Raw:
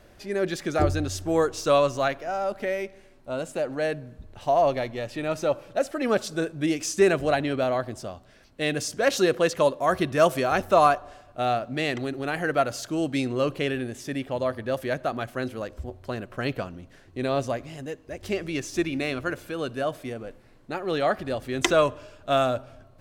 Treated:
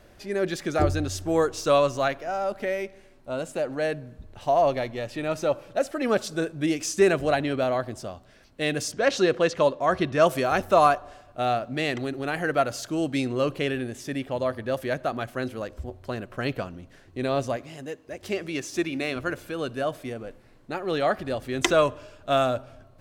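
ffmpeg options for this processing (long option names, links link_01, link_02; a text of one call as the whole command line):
ffmpeg -i in.wav -filter_complex "[0:a]asettb=1/sr,asplit=3[link_01][link_02][link_03];[link_01]atrim=end=8.924[link_04];[link_02]atrim=start=8.92:end=10.27,asetpts=PTS-STARTPTS,afade=type=in:duration=0.004:curve=qsin,afade=type=out:start_time=1.346:duration=0.004:curve=qsin,lowpass=6000[link_05];[link_03]atrim=start=10.266[link_06];[link_04][link_05]acrossfade=duration=0.004:curve1=hsin:curve2=qsin[link_07];[link_07][link_06]acrossfade=duration=0.004:curve1=qsin:curve2=hsin,asettb=1/sr,asplit=3[link_08][link_09][link_10];[link_08]atrim=end=17.564[link_11];[link_09]atrim=start=17.56:end=19.16,asetpts=PTS-STARTPTS,afade=type=in:duration=0.004:curve=qsin,afade=type=out:start_time=1.596:duration=0.004:curve=qsin,highpass=frequency=170:poles=1[link_12];[link_10]atrim=start=19.156[link_13];[link_11][link_12]acrossfade=duration=0.004:curve1=hsin:curve2=qsin[link_14];[link_14][link_13]acrossfade=duration=0.004:curve1=qsin:curve2=hsin" out.wav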